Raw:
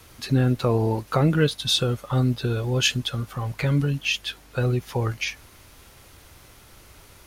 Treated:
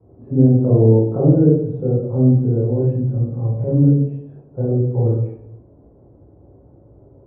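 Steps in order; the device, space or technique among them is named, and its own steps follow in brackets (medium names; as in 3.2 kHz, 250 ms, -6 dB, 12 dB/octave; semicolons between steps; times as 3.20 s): high-pass 83 Hz; next room (low-pass 580 Hz 24 dB/octave; reverberation RT60 0.75 s, pre-delay 16 ms, DRR -7.5 dB); trim -1 dB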